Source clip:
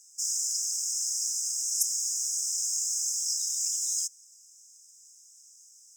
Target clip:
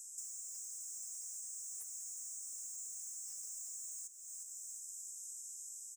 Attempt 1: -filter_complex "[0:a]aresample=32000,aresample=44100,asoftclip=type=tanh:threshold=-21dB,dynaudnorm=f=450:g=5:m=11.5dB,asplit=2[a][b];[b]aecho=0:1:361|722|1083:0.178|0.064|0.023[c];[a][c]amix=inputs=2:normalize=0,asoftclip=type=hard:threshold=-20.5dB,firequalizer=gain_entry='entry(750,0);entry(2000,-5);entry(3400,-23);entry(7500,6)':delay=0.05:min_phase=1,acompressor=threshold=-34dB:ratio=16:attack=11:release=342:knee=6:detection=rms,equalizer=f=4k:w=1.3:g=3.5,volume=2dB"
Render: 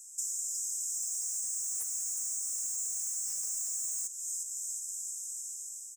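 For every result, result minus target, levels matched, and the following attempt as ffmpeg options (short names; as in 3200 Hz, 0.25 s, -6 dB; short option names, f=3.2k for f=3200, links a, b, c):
compressor: peak gain reduction -10.5 dB; soft clip: distortion -10 dB
-filter_complex "[0:a]aresample=32000,aresample=44100,asoftclip=type=tanh:threshold=-21dB,dynaudnorm=f=450:g=5:m=11.5dB,asplit=2[a][b];[b]aecho=0:1:361|722|1083:0.178|0.064|0.023[c];[a][c]amix=inputs=2:normalize=0,asoftclip=type=hard:threshold=-20.5dB,firequalizer=gain_entry='entry(750,0);entry(2000,-5);entry(3400,-23);entry(7500,6)':delay=0.05:min_phase=1,acompressor=threshold=-46dB:ratio=16:attack=11:release=342:knee=6:detection=rms,equalizer=f=4k:w=1.3:g=3.5,volume=2dB"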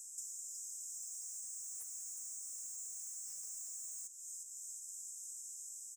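soft clip: distortion -10 dB
-filter_complex "[0:a]aresample=32000,aresample=44100,asoftclip=type=tanh:threshold=-31.5dB,dynaudnorm=f=450:g=5:m=11.5dB,asplit=2[a][b];[b]aecho=0:1:361|722|1083:0.178|0.064|0.023[c];[a][c]amix=inputs=2:normalize=0,asoftclip=type=hard:threshold=-20.5dB,firequalizer=gain_entry='entry(750,0);entry(2000,-5);entry(3400,-23);entry(7500,6)':delay=0.05:min_phase=1,acompressor=threshold=-46dB:ratio=16:attack=11:release=342:knee=6:detection=rms,equalizer=f=4k:w=1.3:g=3.5,volume=2dB"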